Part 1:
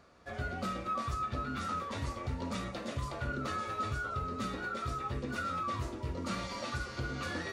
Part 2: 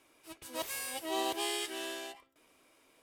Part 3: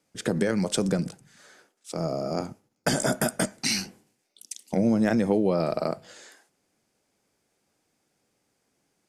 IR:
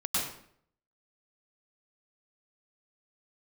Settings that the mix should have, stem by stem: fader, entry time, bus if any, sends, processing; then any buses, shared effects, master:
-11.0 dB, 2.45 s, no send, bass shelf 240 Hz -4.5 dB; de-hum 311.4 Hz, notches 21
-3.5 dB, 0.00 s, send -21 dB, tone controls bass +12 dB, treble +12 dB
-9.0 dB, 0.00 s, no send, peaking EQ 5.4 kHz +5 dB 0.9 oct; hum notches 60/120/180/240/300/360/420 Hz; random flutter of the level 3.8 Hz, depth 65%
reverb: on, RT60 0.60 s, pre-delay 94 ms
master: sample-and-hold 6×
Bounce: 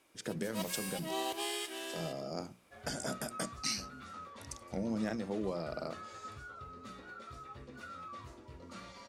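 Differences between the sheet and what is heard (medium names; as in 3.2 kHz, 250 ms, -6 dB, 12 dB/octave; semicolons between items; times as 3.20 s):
stem 2: missing tone controls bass +12 dB, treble +12 dB; master: missing sample-and-hold 6×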